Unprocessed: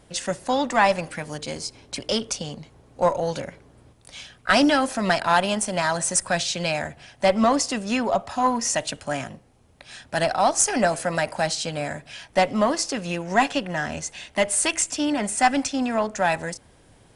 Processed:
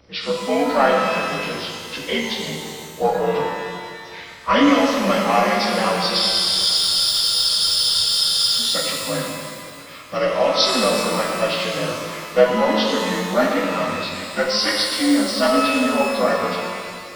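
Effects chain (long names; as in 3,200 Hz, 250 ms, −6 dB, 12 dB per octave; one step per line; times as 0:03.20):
partials spread apart or drawn together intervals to 84%
frozen spectrum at 0:06.21, 2.40 s
reverb with rising layers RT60 2.1 s, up +12 semitones, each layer −8 dB, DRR −0.5 dB
level +2 dB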